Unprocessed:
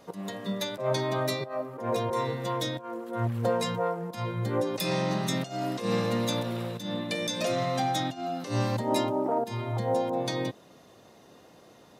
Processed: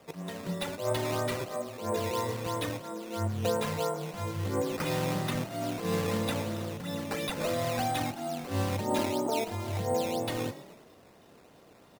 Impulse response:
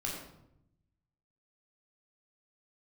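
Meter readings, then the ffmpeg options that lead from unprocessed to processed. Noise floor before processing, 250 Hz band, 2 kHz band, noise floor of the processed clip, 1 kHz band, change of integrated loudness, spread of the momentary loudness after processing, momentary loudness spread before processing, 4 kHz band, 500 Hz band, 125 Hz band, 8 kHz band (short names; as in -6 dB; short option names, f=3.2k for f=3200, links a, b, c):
-55 dBFS, -2.5 dB, -1.0 dB, -57 dBFS, -3.0 dB, -2.5 dB, 6 LU, 6 LU, -3.5 dB, -2.5 dB, -2.0 dB, 0.0 dB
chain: -filter_complex "[0:a]asplit=6[a][b][c][d][e][f];[b]adelay=112,afreqshift=37,volume=-14.5dB[g];[c]adelay=224,afreqshift=74,volume=-19.7dB[h];[d]adelay=336,afreqshift=111,volume=-24.9dB[i];[e]adelay=448,afreqshift=148,volume=-30.1dB[j];[f]adelay=560,afreqshift=185,volume=-35.3dB[k];[a][g][h][i][j][k]amix=inputs=6:normalize=0,afreqshift=-18,acrusher=samples=10:mix=1:aa=0.000001:lfo=1:lforange=10:lforate=3,volume=-2.5dB"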